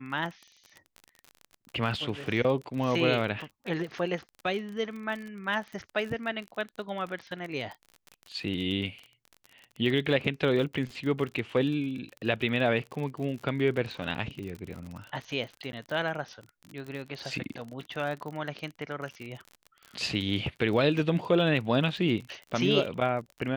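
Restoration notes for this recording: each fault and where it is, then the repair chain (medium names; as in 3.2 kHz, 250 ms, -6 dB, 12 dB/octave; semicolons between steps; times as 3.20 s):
crackle 36 per s -35 dBFS
15.72–15.73 s: dropout 10 ms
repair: de-click; interpolate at 15.72 s, 10 ms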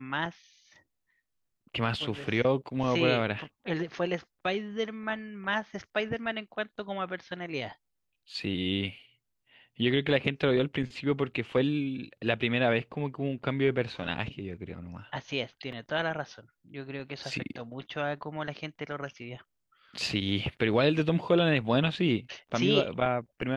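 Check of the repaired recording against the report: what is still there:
nothing left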